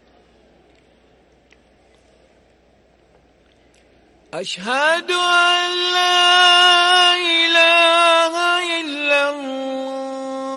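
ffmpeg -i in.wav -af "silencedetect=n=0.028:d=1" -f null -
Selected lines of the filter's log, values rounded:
silence_start: 0.00
silence_end: 4.33 | silence_duration: 4.33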